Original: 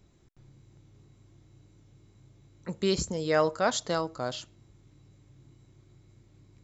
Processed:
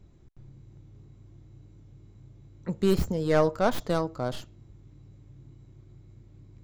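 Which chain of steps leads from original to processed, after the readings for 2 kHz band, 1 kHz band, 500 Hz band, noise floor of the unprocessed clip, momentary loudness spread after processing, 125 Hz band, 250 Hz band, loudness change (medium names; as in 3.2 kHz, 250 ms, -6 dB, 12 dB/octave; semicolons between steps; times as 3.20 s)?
-1.5 dB, +0.5 dB, +2.5 dB, -61 dBFS, 14 LU, +6.0 dB, +5.0 dB, +2.0 dB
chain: tracing distortion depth 0.19 ms; tilt EQ -2 dB/octave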